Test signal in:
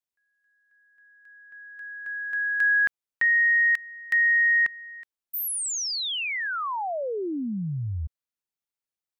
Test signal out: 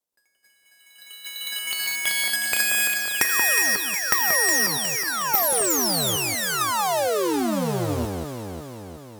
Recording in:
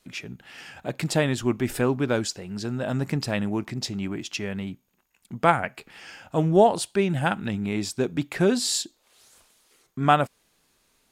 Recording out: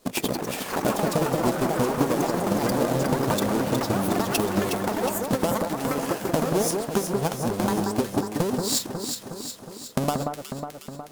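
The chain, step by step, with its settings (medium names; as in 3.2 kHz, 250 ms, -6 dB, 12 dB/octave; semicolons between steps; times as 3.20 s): square wave that keeps the level; graphic EQ 250/500/1000/2000 Hz +6/+9/+4/-4 dB; in parallel at -2 dB: level held to a coarse grid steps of 24 dB; on the sum: transient shaper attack +11 dB, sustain -4 dB; compression 10:1, threshold -19 dBFS; peaking EQ 11 kHz +7 dB 2 oct; ever faster or slower copies 126 ms, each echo +5 st, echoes 3; on a send: echo whose repeats swap between lows and highs 182 ms, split 1.7 kHz, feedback 77%, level -4 dB; on the sum: trim -4 dB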